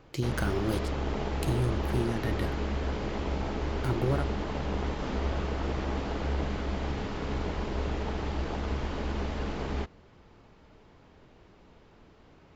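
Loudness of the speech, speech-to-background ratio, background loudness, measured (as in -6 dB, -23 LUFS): -33.0 LUFS, 0.5 dB, -33.5 LUFS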